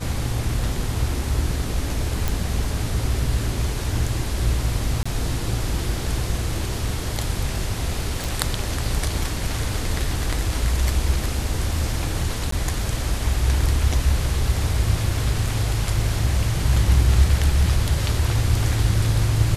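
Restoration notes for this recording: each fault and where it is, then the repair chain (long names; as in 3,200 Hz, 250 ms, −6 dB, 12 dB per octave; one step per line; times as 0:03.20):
0:02.28: click
0:05.03–0:05.05: drop-out 25 ms
0:08.24: click
0:12.51–0:12.52: drop-out 13 ms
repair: click removal
repair the gap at 0:05.03, 25 ms
repair the gap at 0:12.51, 13 ms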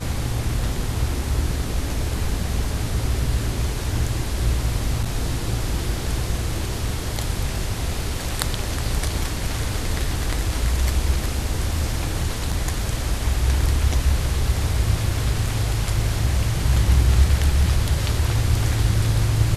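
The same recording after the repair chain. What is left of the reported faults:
none of them is left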